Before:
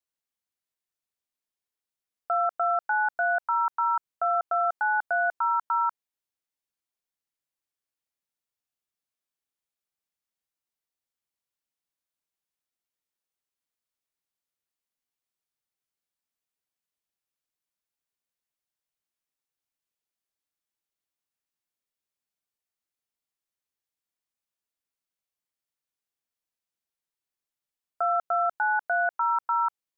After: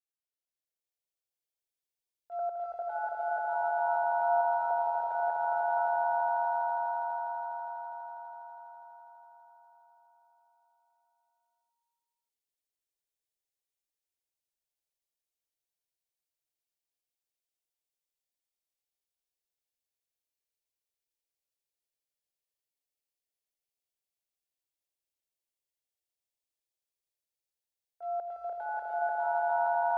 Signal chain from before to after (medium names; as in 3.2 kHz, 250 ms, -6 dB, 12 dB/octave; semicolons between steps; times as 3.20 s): 2.39–5.06 s: elliptic low-pass 1.5 kHz; gate -23 dBFS, range -18 dB; peak limiter -30 dBFS, peak gain reduction 6.5 dB; transient shaper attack -7 dB, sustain -1 dB; static phaser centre 520 Hz, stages 4; echo with a slow build-up 82 ms, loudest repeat 8, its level -3.5 dB; trim +8 dB